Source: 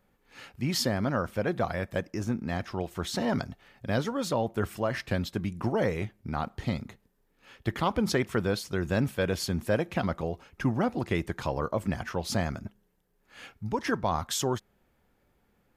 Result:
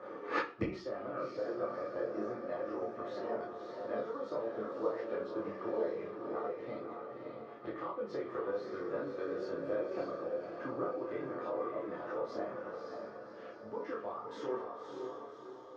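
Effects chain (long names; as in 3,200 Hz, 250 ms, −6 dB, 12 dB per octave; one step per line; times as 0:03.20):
Chebyshev band-pass filter 350–5,900 Hz, order 3
parametric band 1,200 Hz +12 dB 0.22 octaves
downward compressor 4 to 1, threshold −34 dBFS, peak gain reduction 12.5 dB
feedback delay with all-pass diffusion 573 ms, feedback 48%, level −3.5 dB
multi-voice chorus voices 6, 0.43 Hz, delay 27 ms, depth 4.5 ms
gate with flip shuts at −42 dBFS, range −30 dB
convolution reverb RT60 0.40 s, pre-delay 3 ms, DRR −2.5 dB
level +10 dB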